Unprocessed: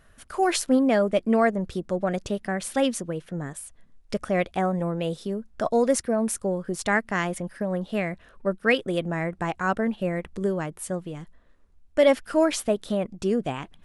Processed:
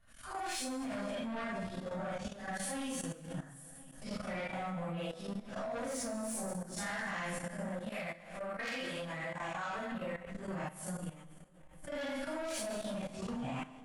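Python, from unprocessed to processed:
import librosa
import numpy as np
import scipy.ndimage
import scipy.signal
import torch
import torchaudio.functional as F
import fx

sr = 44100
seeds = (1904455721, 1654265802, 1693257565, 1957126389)

y = fx.phase_scramble(x, sr, seeds[0], window_ms=200)
y = fx.echo_feedback(y, sr, ms=507, feedback_pct=45, wet_db=-22)
y = 10.0 ** (-22.5 / 20.0) * np.tanh(y / 10.0 ** (-22.5 / 20.0))
y = fx.peak_eq(y, sr, hz=400.0, db=-15.0, octaves=0.48)
y = fx.comb_fb(y, sr, f0_hz=130.0, decay_s=0.39, harmonics='all', damping=0.0, mix_pct=70)
y = fx.rev_plate(y, sr, seeds[1], rt60_s=1.1, hf_ratio=0.9, predelay_ms=100, drr_db=9.0)
y = fx.level_steps(y, sr, step_db=14)
y = fx.bass_treble(y, sr, bass_db=-7, treble_db=4, at=(7.89, 9.92))
y = fx.pre_swell(y, sr, db_per_s=91.0)
y = F.gain(torch.from_numpy(y), 3.5).numpy()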